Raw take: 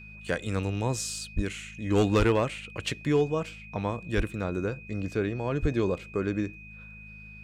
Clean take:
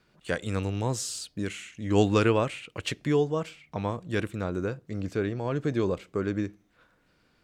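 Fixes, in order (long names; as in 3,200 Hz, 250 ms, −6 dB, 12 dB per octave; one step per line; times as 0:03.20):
clipped peaks rebuilt −15.5 dBFS
hum removal 52.8 Hz, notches 4
notch filter 2,500 Hz, Q 30
high-pass at the plosives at 0:01.35/0:02.18/0:04.16/0:05.61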